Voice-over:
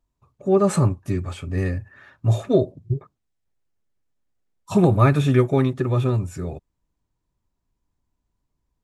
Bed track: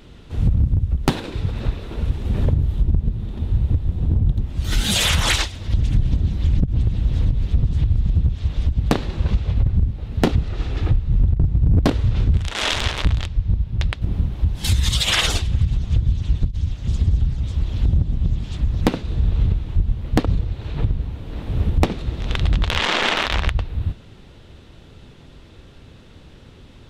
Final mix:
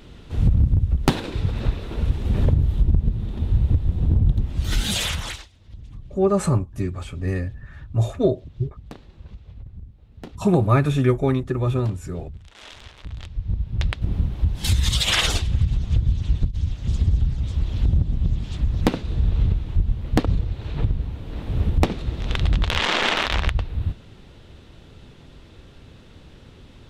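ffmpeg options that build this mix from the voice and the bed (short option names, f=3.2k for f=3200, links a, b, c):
-filter_complex "[0:a]adelay=5700,volume=-1.5dB[a];[1:a]volume=20dB,afade=t=out:st=4.54:d=0.88:silence=0.0841395,afade=t=in:st=13.02:d=0.83:silence=0.1[b];[a][b]amix=inputs=2:normalize=0"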